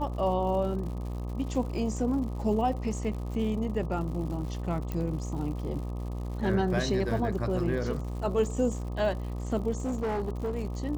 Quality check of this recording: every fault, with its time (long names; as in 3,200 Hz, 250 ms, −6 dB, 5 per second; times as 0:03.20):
mains buzz 60 Hz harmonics 21 −34 dBFS
surface crackle 140 per second −39 dBFS
0:04.92: click −20 dBFS
0:09.84–0:10.57: clipping −26.5 dBFS